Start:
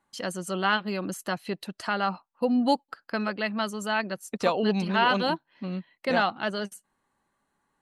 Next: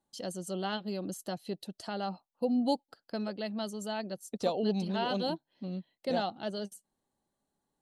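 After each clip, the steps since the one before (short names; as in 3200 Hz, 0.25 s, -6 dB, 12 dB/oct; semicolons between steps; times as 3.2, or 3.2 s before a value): band shelf 1600 Hz -11.5 dB; gain -5 dB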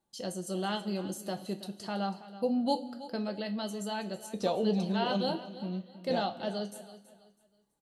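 feedback echo 0.326 s, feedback 31%, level -15.5 dB; reverb, pre-delay 3 ms, DRR 5.5 dB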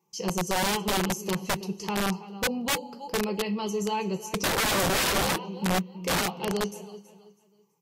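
ripple EQ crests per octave 0.78, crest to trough 17 dB; wrapped overs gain 24.5 dB; gain +4.5 dB; Vorbis 48 kbps 48000 Hz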